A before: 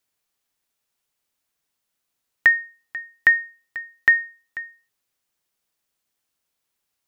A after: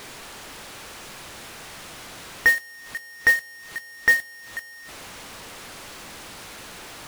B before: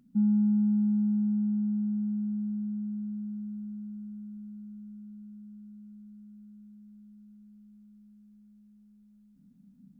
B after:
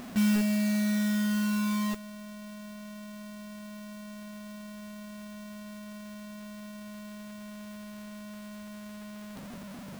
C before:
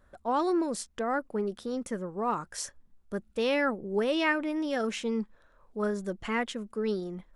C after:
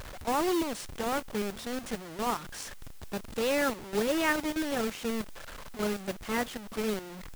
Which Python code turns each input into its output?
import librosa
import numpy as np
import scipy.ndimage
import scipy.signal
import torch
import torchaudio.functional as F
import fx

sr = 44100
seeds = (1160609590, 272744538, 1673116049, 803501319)

y = fx.delta_mod(x, sr, bps=64000, step_db=-26.5)
y = fx.backlash(y, sr, play_db=-27.5)
y = fx.mod_noise(y, sr, seeds[0], snr_db=17)